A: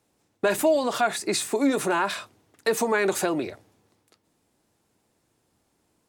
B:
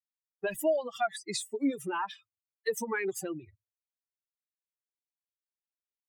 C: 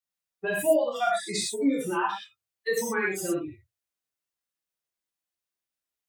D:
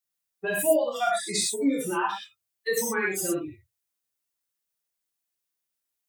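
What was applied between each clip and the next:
spectral dynamics exaggerated over time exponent 3; level −3.5 dB
reverb whose tail is shaped and stops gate 140 ms flat, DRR −5 dB
high-shelf EQ 6,200 Hz +8 dB

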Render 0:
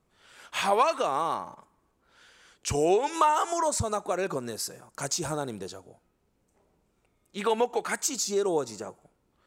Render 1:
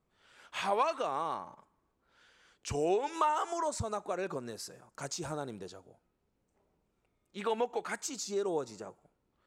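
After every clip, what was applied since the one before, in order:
high-shelf EQ 8,700 Hz −11 dB
level −6.5 dB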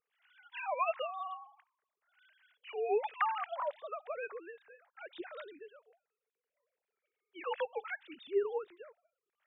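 three sine waves on the formant tracks
flat-topped bell 560 Hz −8.5 dB 2.6 octaves
level +4.5 dB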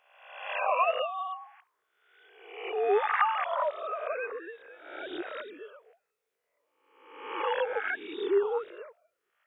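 peak hold with a rise ahead of every peak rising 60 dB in 0.86 s
level +4.5 dB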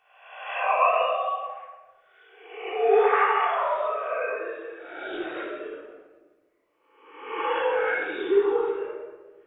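convolution reverb RT60 1.3 s, pre-delay 3 ms, DRR −6 dB
level −2 dB

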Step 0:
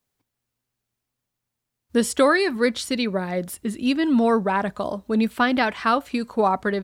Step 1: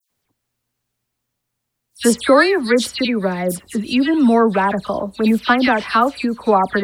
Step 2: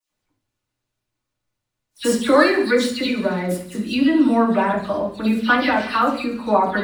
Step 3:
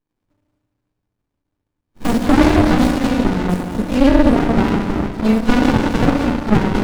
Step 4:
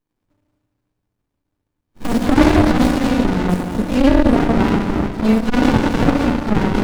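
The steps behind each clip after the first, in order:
all-pass dispersion lows, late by 102 ms, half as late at 2,700 Hz; level +5.5 dB
running median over 3 samples; delay with a high-pass on its return 70 ms, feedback 71%, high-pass 2,400 Hz, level −14 dB; convolution reverb RT60 0.55 s, pre-delay 3 ms, DRR −2.5 dB; level −7 dB
feedback delay network reverb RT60 2.7 s, high-frequency decay 0.75×, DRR 4.5 dB; boost into a limiter +4 dB; windowed peak hold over 65 samples; level +2.5 dB
saturating transformer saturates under 75 Hz; level +1 dB

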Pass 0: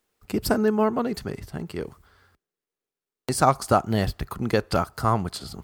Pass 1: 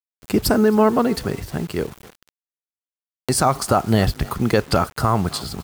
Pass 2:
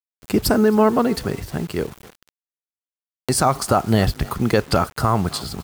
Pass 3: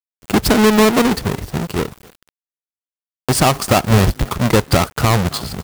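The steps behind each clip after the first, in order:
echo with shifted repeats 265 ms, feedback 33%, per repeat +33 Hz, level −23.5 dB; brickwall limiter −13.5 dBFS, peak gain reduction 9.5 dB; bit reduction 8 bits; level +7.5 dB
no processing that can be heard
each half-wave held at its own peak

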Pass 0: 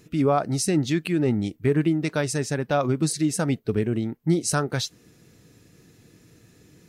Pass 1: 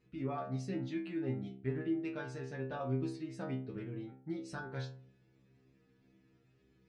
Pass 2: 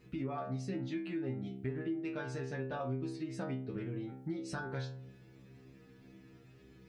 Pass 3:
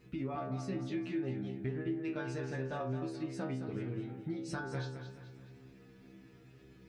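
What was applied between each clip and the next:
low-pass filter 2,900 Hz 12 dB per octave; stiff-string resonator 64 Hz, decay 0.63 s, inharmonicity 0.002; level −4 dB
downward compressor 3 to 1, threshold −50 dBFS, peak gain reduction 15 dB; level +11 dB
feedback echo with a swinging delay time 215 ms, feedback 43%, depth 53 cents, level −9 dB

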